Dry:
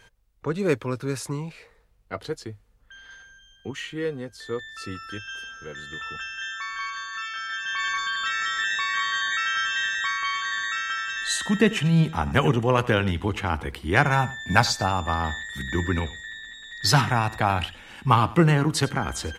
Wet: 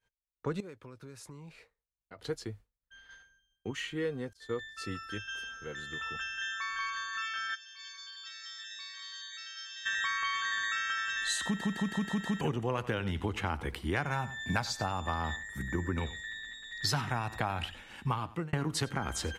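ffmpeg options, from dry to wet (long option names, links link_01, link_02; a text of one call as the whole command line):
ffmpeg -i in.wav -filter_complex "[0:a]asettb=1/sr,asplit=3[link_01][link_02][link_03];[link_01]atrim=end=0.604[link_04];[link_02]atrim=start=0.6:end=2.19,asetpts=PTS-STARTPTS,afade=type=in:duration=0.004:curve=qsin,afade=type=out:start_time=1.586:duration=0.004:curve=qsin,acompressor=threshold=-39dB:ratio=16:attack=3.2:release=140:knee=1:detection=peak[link_05];[link_03]atrim=start=2.186[link_06];[link_04][link_05]acrossfade=duration=0.004:curve1=hsin:curve2=qsin[link_07];[link_07][link_06]acrossfade=duration=0.004:curve1=qsin:curve2=hsin,asettb=1/sr,asplit=3[link_08][link_09][link_10];[link_08]atrim=end=4.334[link_11];[link_09]atrim=start=4.33:end=5.37,asetpts=PTS-STARTPTS,afade=type=in:duration=0.004:curve=qsin,afade=type=out:start_time=1.036:duration=0.004:curve=qsin,agate=range=-33dB:threshold=-39dB:ratio=3:release=100:detection=peak[link_12];[link_10]atrim=start=5.366[link_13];[link_11][link_12]acrossfade=duration=0.004:curve1=hsin:curve2=qsin[link_14];[link_14][link_13]acrossfade=duration=0.004:curve1=qsin:curve2=hsin,asplit=3[link_15][link_16][link_17];[link_15]afade=type=out:start_time=7.54:duration=0.02[link_18];[link_16]bandpass=frequency=5000:width_type=q:width=4.1,afade=type=in:start_time=7.54:duration=0.02,afade=type=out:start_time=9.85:duration=0.02[link_19];[link_17]afade=type=in:start_time=9.85:duration=0.02[link_20];[link_18][link_19][link_20]amix=inputs=3:normalize=0,asettb=1/sr,asplit=3[link_21][link_22][link_23];[link_21]atrim=end=15.364[link_24];[link_22]atrim=start=15.36:end=15.98,asetpts=PTS-STARTPTS,afade=type=in:duration=0.004:curve=qsin,afade=type=out:start_time=0.616:duration=0.004:curve=qsin,equalizer=frequency=3600:width_type=o:width=1.1:gain=-14.5[link_25];[link_23]atrim=start=15.976[link_26];[link_24][link_25]acrossfade=duration=0.004:curve1=hsin:curve2=qsin[link_27];[link_27][link_26]acrossfade=duration=0.004:curve1=qsin:curve2=hsin,asplit=8[link_28][link_29][link_30][link_31][link_32][link_33][link_34][link_35];[link_28]atrim=end=11.612[link_36];[link_29]atrim=start=11.448:end=11.612[link_37];[link_30]atrim=start=11.448:end=11.612[link_38];[link_31]atrim=start=11.448:end=11.612[link_39];[link_32]atrim=start=11.448:end=11.612[link_40];[link_33]atrim=start=11.448:end=11.612[link_41];[link_34]atrim=start=12.408:end=18.53,asetpts=PTS-STARTPTS,afade=type=out:start_time=5.552:duration=0.57[link_42];[link_35]atrim=start=18.53,asetpts=PTS-STARTPTS,afade=type=in:duration=0.004:curve=hsin[link_43];[link_36][link_37]acrossfade=duration=0.004:curve1=hsin:curve2=hsin[link_44];[link_44][link_38]acrossfade=duration=0.004:curve1=hsin:curve2=hsin[link_45];[link_45][link_39]acrossfade=duration=0.004:curve1=hsin:curve2=hsin[link_46];[link_46][link_40]acrossfade=duration=0.004:curve1=hsin:curve2=hsin[link_47];[link_47][link_41]acrossfade=duration=0.004:curve1=hsin:curve2=hsin[link_48];[link_42][link_43]concat=n=2:v=0:a=1[link_49];[link_48][link_49]acrossfade=duration=0.004:curve1=hsin:curve2=hsin,agate=range=-33dB:threshold=-41dB:ratio=3:detection=peak,acompressor=threshold=-25dB:ratio=6,volume=-3.5dB" out.wav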